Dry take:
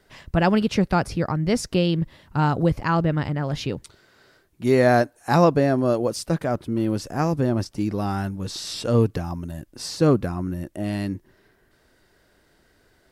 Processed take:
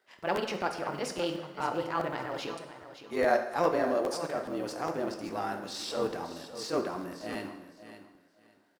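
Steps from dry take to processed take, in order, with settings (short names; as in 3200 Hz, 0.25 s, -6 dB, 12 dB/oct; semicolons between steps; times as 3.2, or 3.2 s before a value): G.711 law mismatch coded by A; HPF 450 Hz 12 dB/oct; high shelf 3900 Hz -6.5 dB; in parallel at +0.5 dB: compressor, threshold -32 dBFS, peak gain reduction 16.5 dB; on the sum: transient shaper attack -8 dB, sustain +1 dB; granular stretch 0.67×, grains 46 ms; on a send: feedback echo 0.563 s, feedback 21%, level -12.5 dB; on the sum: plate-style reverb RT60 1 s, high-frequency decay 0.85×, DRR 5 dB; crackling interface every 0.41 s, samples 512, repeat, from 0.35; gain -5.5 dB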